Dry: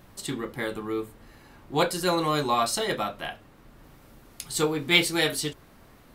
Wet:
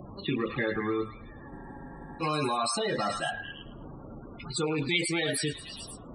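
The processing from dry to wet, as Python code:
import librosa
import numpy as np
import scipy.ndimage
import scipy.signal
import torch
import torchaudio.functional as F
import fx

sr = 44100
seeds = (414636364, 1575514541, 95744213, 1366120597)

p1 = fx.rattle_buzz(x, sr, strikes_db=-33.0, level_db=-25.0)
p2 = fx.highpass(p1, sr, hz=55.0, slope=6)
p3 = fx.env_lowpass(p2, sr, base_hz=1400.0, full_db=-23.0)
p4 = fx.over_compress(p3, sr, threshold_db=-30.0, ratio=-0.5)
p5 = p3 + F.gain(torch.from_numpy(p4), 2.0).numpy()
p6 = fx.high_shelf(p5, sr, hz=5500.0, db=4.5)
p7 = fx.spec_topn(p6, sr, count=32)
p8 = fx.low_shelf(p7, sr, hz=81.0, db=7.5)
p9 = p8 + fx.echo_stepped(p8, sr, ms=107, hz=1400.0, octaves=0.7, feedback_pct=70, wet_db=-4.5, dry=0)
p10 = fx.spec_freeze(p9, sr, seeds[0], at_s=1.52, hold_s=0.69)
p11 = fx.band_squash(p10, sr, depth_pct=40)
y = F.gain(torch.from_numpy(p11), -7.0).numpy()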